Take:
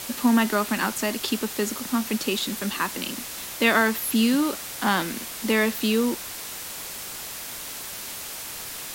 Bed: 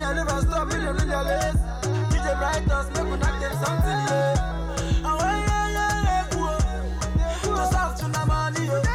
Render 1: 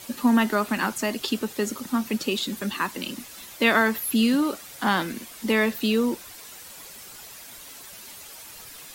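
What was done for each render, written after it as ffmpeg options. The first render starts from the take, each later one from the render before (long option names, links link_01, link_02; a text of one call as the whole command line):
ffmpeg -i in.wav -af "afftdn=noise_reduction=10:noise_floor=-36" out.wav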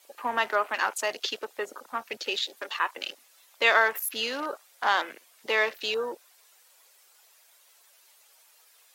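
ffmpeg -i in.wav -af "highpass=frequency=480:width=0.5412,highpass=frequency=480:width=1.3066,afwtdn=0.0126" out.wav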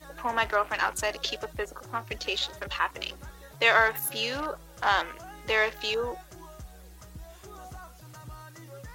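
ffmpeg -i in.wav -i bed.wav -filter_complex "[1:a]volume=-22dB[link_01];[0:a][link_01]amix=inputs=2:normalize=0" out.wav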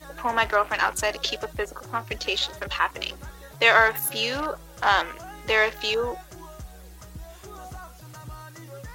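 ffmpeg -i in.wav -af "volume=4dB" out.wav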